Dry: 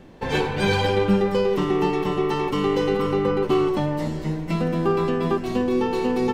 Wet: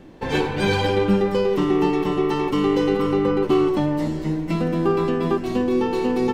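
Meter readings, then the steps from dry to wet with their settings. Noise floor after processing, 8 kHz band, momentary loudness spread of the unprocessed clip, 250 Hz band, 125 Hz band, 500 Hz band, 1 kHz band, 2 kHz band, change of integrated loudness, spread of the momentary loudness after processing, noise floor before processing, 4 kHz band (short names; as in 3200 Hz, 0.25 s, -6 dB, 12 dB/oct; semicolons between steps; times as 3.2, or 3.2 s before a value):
-29 dBFS, n/a, 5 LU, +2.5 dB, 0.0 dB, +1.0 dB, 0.0 dB, 0.0 dB, +1.5 dB, 4 LU, -30 dBFS, 0.0 dB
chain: bell 310 Hz +6.5 dB 0.32 oct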